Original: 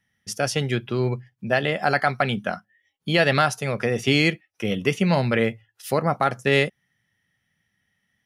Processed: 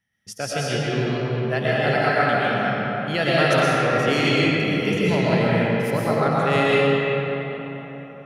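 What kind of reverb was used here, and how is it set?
digital reverb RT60 4.2 s, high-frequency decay 0.55×, pre-delay 80 ms, DRR -7.5 dB; gain -5.5 dB

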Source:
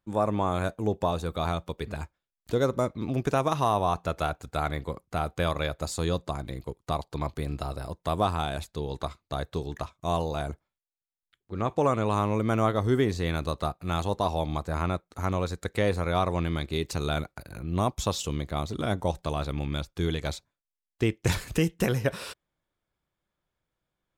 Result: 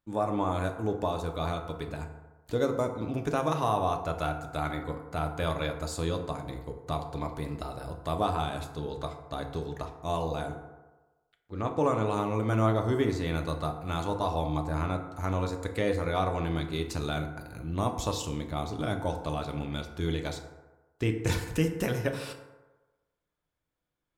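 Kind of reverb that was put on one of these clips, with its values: FDN reverb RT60 1.2 s, low-frequency decay 0.8×, high-frequency decay 0.4×, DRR 4 dB; gain -4 dB

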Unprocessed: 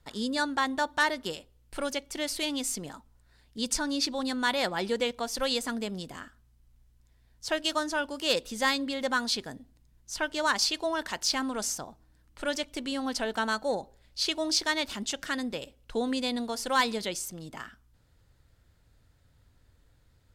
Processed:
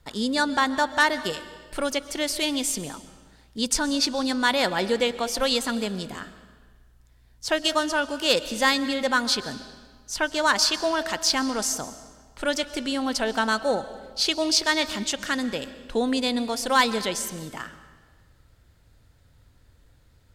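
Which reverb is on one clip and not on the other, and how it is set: digital reverb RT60 1.5 s, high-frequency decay 0.9×, pre-delay 90 ms, DRR 14 dB; gain +5.5 dB

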